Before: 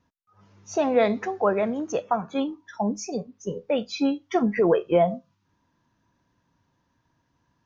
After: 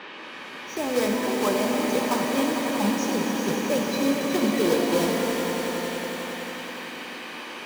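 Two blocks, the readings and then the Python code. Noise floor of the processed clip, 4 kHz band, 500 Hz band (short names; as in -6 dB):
-39 dBFS, +9.5 dB, -1.0 dB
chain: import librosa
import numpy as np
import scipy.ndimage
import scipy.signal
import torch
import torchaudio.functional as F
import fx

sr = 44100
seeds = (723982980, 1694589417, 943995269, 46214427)

p1 = fx.block_float(x, sr, bits=3)
p2 = fx.rider(p1, sr, range_db=10, speed_s=0.5)
p3 = p1 + F.gain(torch.from_numpy(p2), -1.5).numpy()
p4 = fx.dmg_noise_band(p3, sr, seeds[0], low_hz=190.0, high_hz=3000.0, level_db=-32.0)
p5 = fx.notch_comb(p4, sr, f0_hz=690.0)
p6 = p5 + fx.echo_swell(p5, sr, ms=91, loudest=5, wet_db=-10.0, dry=0)
p7 = fx.rev_shimmer(p6, sr, seeds[1], rt60_s=2.4, semitones=12, shimmer_db=-8, drr_db=3.0)
y = F.gain(torch.from_numpy(p7), -8.5).numpy()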